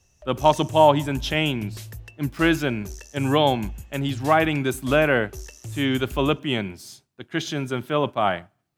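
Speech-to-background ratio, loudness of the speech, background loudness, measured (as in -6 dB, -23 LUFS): 16.5 dB, -23.0 LUFS, -39.5 LUFS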